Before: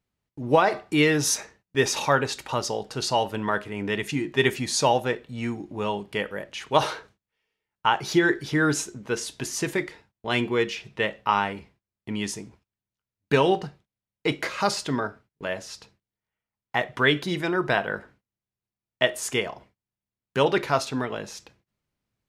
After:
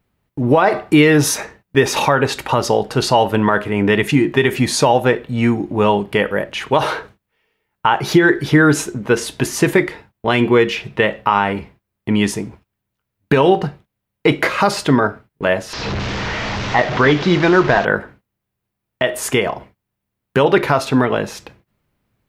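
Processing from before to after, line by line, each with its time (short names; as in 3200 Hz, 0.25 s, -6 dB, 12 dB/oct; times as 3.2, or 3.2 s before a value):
15.73–17.85 delta modulation 32 kbps, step -29 dBFS
whole clip: compressor, threshold -21 dBFS; bell 6200 Hz -9.5 dB 1.7 oct; maximiser +15.5 dB; gain -1 dB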